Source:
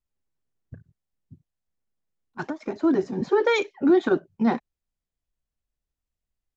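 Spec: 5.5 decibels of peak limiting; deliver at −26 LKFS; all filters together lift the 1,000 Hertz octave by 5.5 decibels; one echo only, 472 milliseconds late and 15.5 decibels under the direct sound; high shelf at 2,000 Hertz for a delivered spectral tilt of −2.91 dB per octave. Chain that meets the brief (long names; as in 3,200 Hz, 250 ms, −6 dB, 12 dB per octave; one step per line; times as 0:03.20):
parametric band 1,000 Hz +9 dB
high-shelf EQ 2,000 Hz −8.5 dB
brickwall limiter −13.5 dBFS
single-tap delay 472 ms −15.5 dB
level −1 dB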